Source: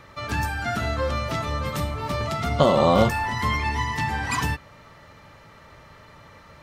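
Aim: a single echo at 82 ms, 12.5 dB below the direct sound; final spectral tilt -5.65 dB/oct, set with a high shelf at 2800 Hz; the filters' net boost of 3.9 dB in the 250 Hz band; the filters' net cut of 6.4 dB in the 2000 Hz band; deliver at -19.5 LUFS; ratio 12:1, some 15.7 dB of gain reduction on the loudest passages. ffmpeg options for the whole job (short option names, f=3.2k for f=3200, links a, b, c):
-af "equalizer=f=250:t=o:g=5,equalizer=f=2k:t=o:g=-6.5,highshelf=f=2.8k:g=-3.5,acompressor=threshold=-28dB:ratio=12,aecho=1:1:82:0.237,volume=13dB"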